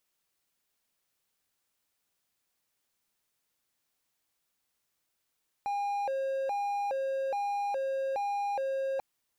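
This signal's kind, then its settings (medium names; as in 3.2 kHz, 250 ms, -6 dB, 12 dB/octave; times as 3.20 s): siren hi-lo 538–810 Hz 1.2 per s triangle -27 dBFS 3.34 s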